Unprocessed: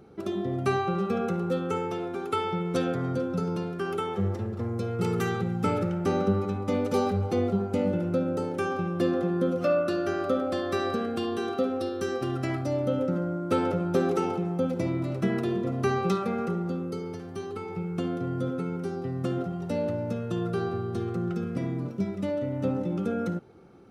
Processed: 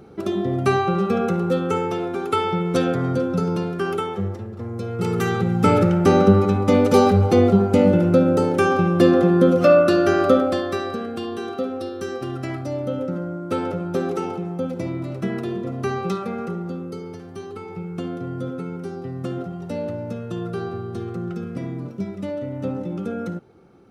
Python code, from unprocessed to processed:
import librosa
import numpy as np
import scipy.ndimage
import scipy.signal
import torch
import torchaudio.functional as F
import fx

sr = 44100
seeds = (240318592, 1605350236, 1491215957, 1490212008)

y = fx.gain(x, sr, db=fx.line((3.88, 7.0), (4.47, -1.5), (5.77, 11.0), (10.33, 11.0), (10.86, 1.0)))